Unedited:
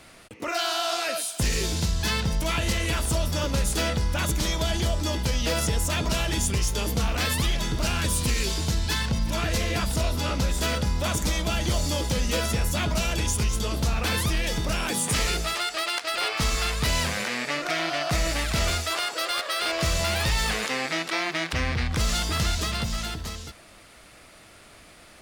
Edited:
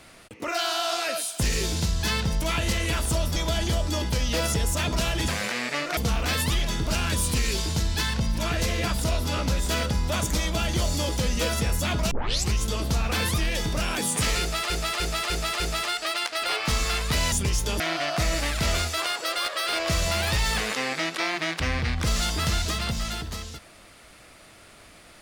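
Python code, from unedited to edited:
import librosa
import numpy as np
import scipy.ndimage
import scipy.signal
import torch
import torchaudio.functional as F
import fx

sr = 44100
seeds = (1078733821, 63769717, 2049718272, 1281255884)

y = fx.edit(x, sr, fx.cut(start_s=3.36, length_s=1.13),
    fx.swap(start_s=6.41, length_s=0.48, other_s=17.04, other_length_s=0.69),
    fx.tape_start(start_s=13.03, length_s=0.41),
    fx.repeat(start_s=15.32, length_s=0.3, count=5), tone=tone)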